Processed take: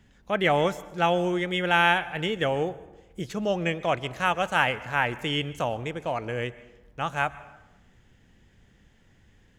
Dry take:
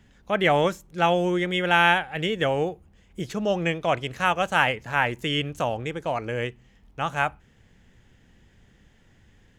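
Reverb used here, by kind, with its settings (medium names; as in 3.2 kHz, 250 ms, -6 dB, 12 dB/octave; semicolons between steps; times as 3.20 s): plate-style reverb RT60 1 s, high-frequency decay 0.6×, pre-delay 110 ms, DRR 17.5 dB; trim -2 dB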